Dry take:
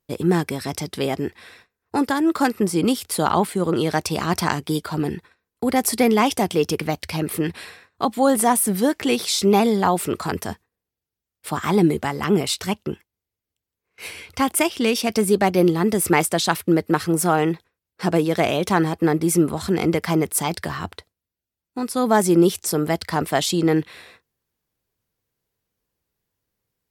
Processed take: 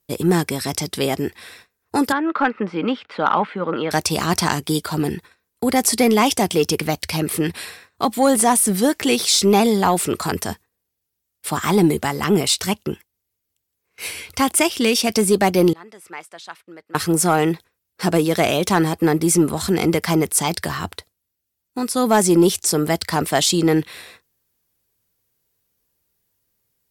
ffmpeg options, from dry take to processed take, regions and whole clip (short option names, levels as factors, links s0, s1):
-filter_complex "[0:a]asettb=1/sr,asplit=3[s0][s1][s2];[s0]atrim=end=2.124[s3];[s1]atrim=start=2.12:end=3.91,asetpts=PTS-STARTPTS,afade=t=in:d=0.004:c=qsin,afade=t=out:st=1.786:d=0.004:c=qsin,highpass=260,equalizer=f=370:t=q:w=4:g=-9,equalizer=f=700:t=q:w=4:g=4,equalizer=f=1400:t=q:w=4:g=5,lowpass=f=2700:w=0.5412,lowpass=f=2700:w=1.3066,bandreject=f=700:w=5.4[s4];[s2]atrim=start=3.906[s5];[s3][s4]acrossfade=d=0.004:c1=hsin:c2=qsin[s6];[s6][s5]acrossfade=d=0.004:c1=qsin:c2=hsin,asettb=1/sr,asplit=3[s7][s8][s9];[s7]atrim=end=15.734[s10];[s8]atrim=start=15.73:end=16.95,asetpts=PTS-STARTPTS,afade=t=in:d=0.004:c=qsin,afade=t=out:st=1.216:d=0.004:c=qsin,lowpass=1500,aderivative[s11];[s9]atrim=start=16.946[s12];[s10][s11]acrossfade=d=0.004:c1=hsin:c2=qsin[s13];[s13][s12]acrossfade=d=0.004:c1=qsin:c2=hsin,acrossover=split=9400[s14][s15];[s15]acompressor=threshold=0.00708:ratio=4:attack=1:release=60[s16];[s14][s16]amix=inputs=2:normalize=0,aemphasis=mode=production:type=cd,acontrast=43,volume=0.708"